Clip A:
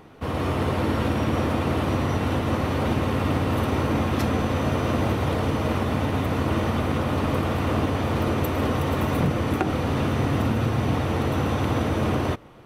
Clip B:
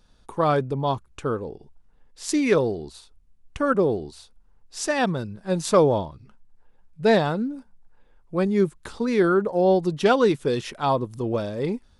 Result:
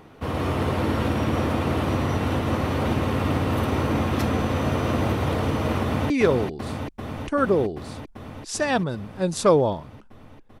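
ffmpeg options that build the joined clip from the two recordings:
ffmpeg -i cue0.wav -i cue1.wav -filter_complex "[0:a]apad=whole_dur=10.6,atrim=end=10.6,atrim=end=6.102[link_01];[1:a]atrim=start=2.378:end=6.88[link_02];[link_01][link_02]acrossfade=duration=0.004:curve1=hsin:curve2=hsin,asplit=2[link_03][link_04];[link_04]afade=type=in:start_time=5.81:duration=0.01,afade=type=out:start_time=6.1:duration=0.01,aecho=0:1:390|780|1170|1560|1950|2340|2730|3120|3510|3900|4290|4680:0.595662|0.47653|0.381224|0.304979|0.243983|0.195187|0.156149|0.124919|0.0999355|0.0799484|0.0639587|0.051167[link_05];[link_03][link_05]amix=inputs=2:normalize=0" out.wav

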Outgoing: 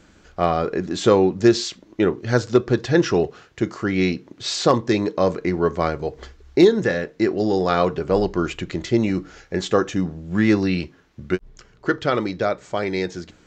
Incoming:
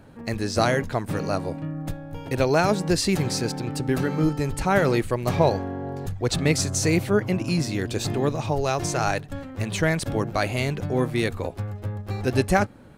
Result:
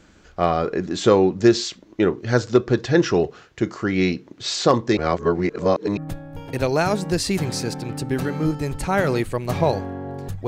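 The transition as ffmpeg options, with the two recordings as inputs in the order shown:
ffmpeg -i cue0.wav -i cue1.wav -filter_complex "[0:a]apad=whole_dur=10.47,atrim=end=10.47,asplit=2[link_01][link_02];[link_01]atrim=end=4.972[link_03];[link_02]atrim=start=4.968:end=5.972,asetpts=PTS-STARTPTS,areverse[link_04];[1:a]atrim=start=1.748:end=6.25[link_05];[link_03][link_04]acrossfade=duration=0.004:curve1=hsin:curve2=hsin[link_06];[link_06][link_05]acrossfade=duration=0.004:curve1=hsin:curve2=hsin" out.wav

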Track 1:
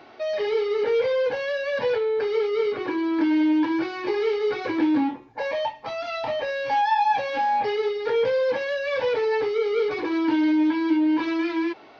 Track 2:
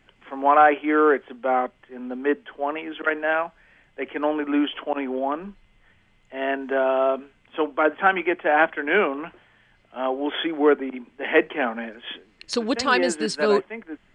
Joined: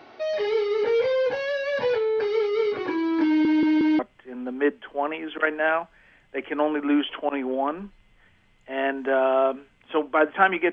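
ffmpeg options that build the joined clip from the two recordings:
ffmpeg -i cue0.wav -i cue1.wav -filter_complex "[0:a]apad=whole_dur=10.72,atrim=end=10.72,asplit=4[link_01][link_02][link_03][link_04];[link_01]atrim=end=3.452[link_05];[link_02]atrim=start=3.268:end=3.452[link_06];[link_03]atrim=start=3.268:end=3.452[link_07];[link_04]atrim=start=3.268:end=3.452[link_08];[1:a]atrim=start=1.628:end=8.36[link_09];[link_05][link_06]acrossfade=duration=0.004:curve1=hsin:curve2=hsin[link_10];[link_10][link_07]acrossfade=duration=0.004:curve1=hsin:curve2=hsin[link_11];[link_11][link_08]acrossfade=duration=0.004:curve1=hsin:curve2=hsin[link_12];[link_12][link_09]acrossfade=duration=0.004:curve1=hsin:curve2=hsin" out.wav

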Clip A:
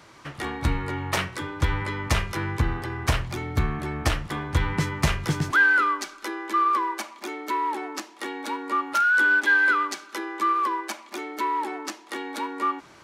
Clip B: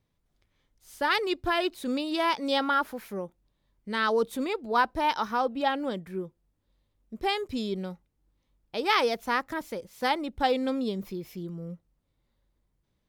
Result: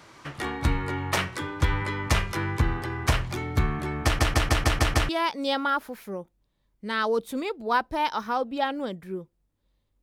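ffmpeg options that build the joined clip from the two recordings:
ffmpeg -i cue0.wav -i cue1.wav -filter_complex "[0:a]apad=whole_dur=10.02,atrim=end=10.02,asplit=7[link_01][link_02][link_03][link_04][link_05][link_06][link_07];[link_01]atrim=end=4.192[link_08];[link_02]atrim=start=4.038:end=4.192[link_09];[link_03]atrim=start=4.038:end=4.192[link_10];[link_04]atrim=start=4.038:end=4.192[link_11];[link_05]atrim=start=4.038:end=4.192[link_12];[link_06]atrim=start=4.038:end=4.192[link_13];[link_07]atrim=start=4.038:end=4.192[link_14];[1:a]atrim=start=2.128:end=7.06[link_15];[link_08][link_09]acrossfade=duration=0.004:curve1=hsin:curve2=hsin[link_16];[link_16][link_10]acrossfade=duration=0.004:curve1=hsin:curve2=hsin[link_17];[link_17][link_11]acrossfade=duration=0.004:curve1=hsin:curve2=hsin[link_18];[link_18][link_12]acrossfade=duration=0.004:curve1=hsin:curve2=hsin[link_19];[link_19][link_13]acrossfade=duration=0.004:curve1=hsin:curve2=hsin[link_20];[link_20][link_14]acrossfade=duration=0.004:curve1=hsin:curve2=hsin[link_21];[link_21][link_15]acrossfade=duration=0.004:curve1=hsin:curve2=hsin" out.wav

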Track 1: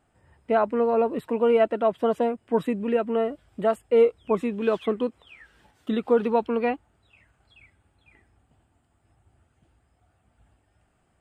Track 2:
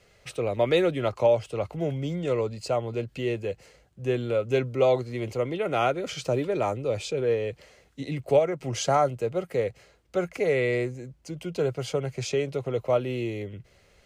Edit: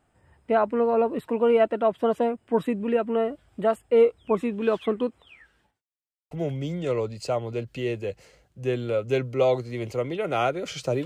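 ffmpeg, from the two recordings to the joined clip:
ffmpeg -i cue0.wav -i cue1.wav -filter_complex "[0:a]apad=whole_dur=11.05,atrim=end=11.05,asplit=2[link_01][link_02];[link_01]atrim=end=5.82,asetpts=PTS-STARTPTS,afade=type=out:start_time=4.99:duration=0.83:curve=qsin[link_03];[link_02]atrim=start=5.82:end=6.31,asetpts=PTS-STARTPTS,volume=0[link_04];[1:a]atrim=start=1.72:end=6.46,asetpts=PTS-STARTPTS,afade=type=in:duration=0.004:curve=hsin[link_05];[link_03][link_04][link_05]concat=n=3:v=0:a=1" out.wav

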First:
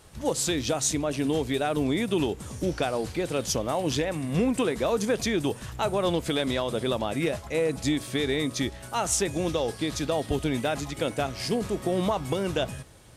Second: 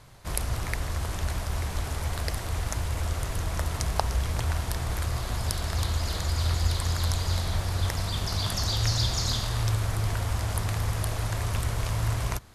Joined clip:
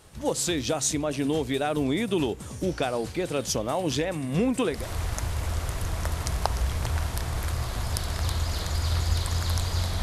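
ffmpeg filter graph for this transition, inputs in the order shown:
ffmpeg -i cue0.wav -i cue1.wav -filter_complex "[0:a]apad=whole_dur=10.02,atrim=end=10.02,atrim=end=4.89,asetpts=PTS-STARTPTS[link_01];[1:a]atrim=start=2.21:end=7.56,asetpts=PTS-STARTPTS[link_02];[link_01][link_02]acrossfade=duration=0.22:curve1=tri:curve2=tri" out.wav

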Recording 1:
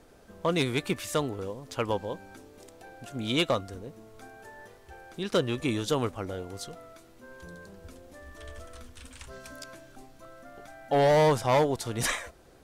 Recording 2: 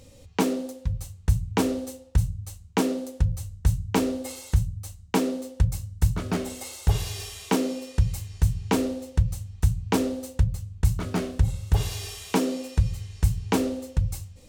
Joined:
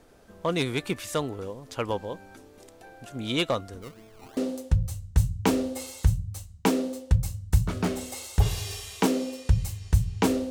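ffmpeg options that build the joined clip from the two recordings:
ffmpeg -i cue0.wav -i cue1.wav -filter_complex "[0:a]asplit=3[link_01][link_02][link_03];[link_01]afade=type=out:start_time=3.81:duration=0.02[link_04];[link_02]acrusher=samples=21:mix=1:aa=0.000001:lfo=1:lforange=12.6:lforate=2.9,afade=type=in:start_time=3.81:duration=0.02,afade=type=out:start_time=4.37:duration=0.02[link_05];[link_03]afade=type=in:start_time=4.37:duration=0.02[link_06];[link_04][link_05][link_06]amix=inputs=3:normalize=0,apad=whole_dur=10.5,atrim=end=10.5,atrim=end=4.372[link_07];[1:a]atrim=start=2.858:end=8.99[link_08];[link_07][link_08]acrossfade=duration=0.004:curve1=hsin:curve2=hsin" out.wav

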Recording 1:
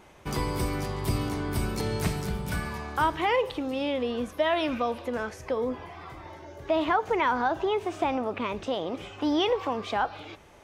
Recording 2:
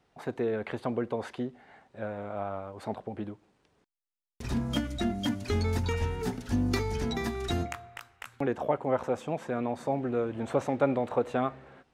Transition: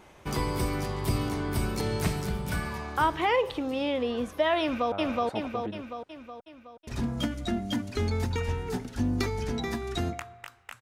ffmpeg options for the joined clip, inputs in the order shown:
ffmpeg -i cue0.wav -i cue1.wav -filter_complex "[0:a]apad=whole_dur=10.81,atrim=end=10.81,atrim=end=4.922[link_01];[1:a]atrim=start=2.448:end=8.34[link_02];[link_01][link_02]acrossfade=duration=0.004:curve1=hsin:curve2=hsin,asplit=2[link_03][link_04];[link_04]afade=type=in:start_time=4.61:duration=0.01,afade=type=out:start_time=4.92:duration=0.01,aecho=0:1:370|740|1110|1480|1850|2220|2590|2960:1|0.55|0.3025|0.166375|0.0915063|0.0503284|0.0276806|0.0152244[link_05];[link_03][link_05]amix=inputs=2:normalize=0" out.wav

